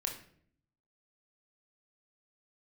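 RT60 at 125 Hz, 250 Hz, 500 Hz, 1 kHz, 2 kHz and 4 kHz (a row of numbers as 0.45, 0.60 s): 1.0, 0.90, 0.70, 0.50, 0.50, 0.45 s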